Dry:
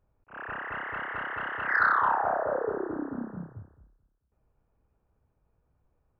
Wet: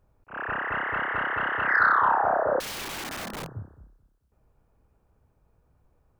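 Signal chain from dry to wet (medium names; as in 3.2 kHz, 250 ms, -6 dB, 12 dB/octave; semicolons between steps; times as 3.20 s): in parallel at +1 dB: peak limiter -25 dBFS, peak gain reduction 11 dB; 2.60–3.57 s: on the sum: integer overflow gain 30.5 dB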